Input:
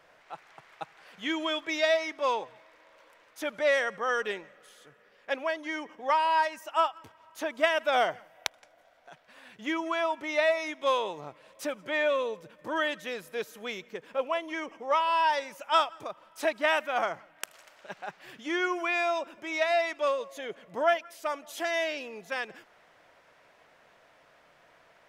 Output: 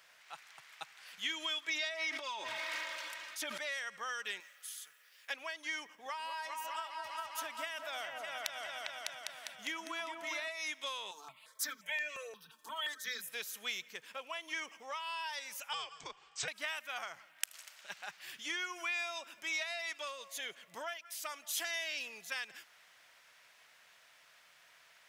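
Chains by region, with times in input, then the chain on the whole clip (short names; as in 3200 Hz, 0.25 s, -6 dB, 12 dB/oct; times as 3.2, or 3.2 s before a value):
1.69–3.58 high shelf 9700 Hz -11 dB + comb 3.2 ms, depth 70% + sustainer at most 23 dB/s
4.4–5.3 HPF 1100 Hz 6 dB/oct + high shelf 7800 Hz +11 dB
5.85–10.48 bell 3600 Hz -3.5 dB 2.5 oct + repeats that get brighter 0.201 s, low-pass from 750 Hz, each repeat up 2 oct, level -3 dB
11.11–13.28 comb 4.5 ms, depth 70% + bands offset in time highs, lows 30 ms, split 260 Hz + step phaser 5.7 Hz 560–3600 Hz
15.73–16.48 brick-wall FIR low-pass 8600 Hz + compressor 2:1, threshold -29 dBFS + frequency shift -160 Hz
whole clip: tilt +2 dB/oct; compressor 12:1, threshold -31 dBFS; passive tone stack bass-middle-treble 5-5-5; gain +7.5 dB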